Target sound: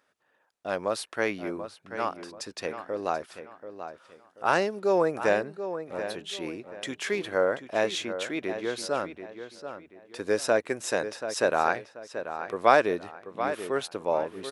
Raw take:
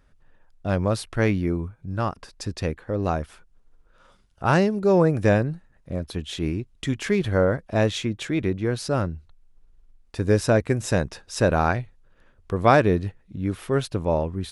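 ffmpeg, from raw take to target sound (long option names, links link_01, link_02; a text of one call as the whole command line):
ffmpeg -i in.wav -filter_complex "[0:a]highpass=440,asplit=2[link_01][link_02];[link_02]adelay=734,lowpass=frequency=3500:poles=1,volume=-10dB,asplit=2[link_03][link_04];[link_04]adelay=734,lowpass=frequency=3500:poles=1,volume=0.33,asplit=2[link_05][link_06];[link_06]adelay=734,lowpass=frequency=3500:poles=1,volume=0.33,asplit=2[link_07][link_08];[link_08]adelay=734,lowpass=frequency=3500:poles=1,volume=0.33[link_09];[link_03][link_05][link_07][link_09]amix=inputs=4:normalize=0[link_10];[link_01][link_10]amix=inputs=2:normalize=0,volume=-1.5dB" out.wav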